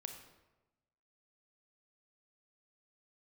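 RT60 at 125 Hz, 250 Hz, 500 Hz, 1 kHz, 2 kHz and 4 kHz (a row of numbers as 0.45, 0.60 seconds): 1.3, 1.2, 1.1, 1.0, 0.85, 0.70 seconds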